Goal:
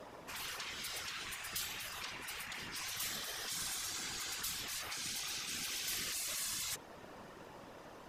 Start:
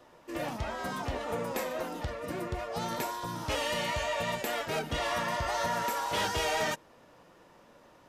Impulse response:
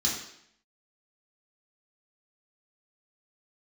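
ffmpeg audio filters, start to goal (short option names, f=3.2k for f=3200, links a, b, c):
-af "afftfilt=real='re*lt(hypot(re,im),0.0158)':imag='im*lt(hypot(re,im),0.0158)':win_size=1024:overlap=0.75,afftfilt=real='hypot(re,im)*cos(2*PI*random(0))':imag='hypot(re,im)*sin(2*PI*random(1))':win_size=512:overlap=0.75,volume=11dB"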